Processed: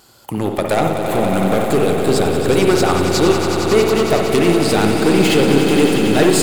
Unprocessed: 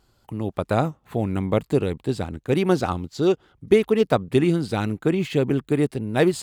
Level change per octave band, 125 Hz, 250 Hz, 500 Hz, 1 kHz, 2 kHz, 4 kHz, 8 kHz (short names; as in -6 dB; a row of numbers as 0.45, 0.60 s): +4.5, +7.5, +7.5, +10.0, +11.0, +14.0, +17.5 dB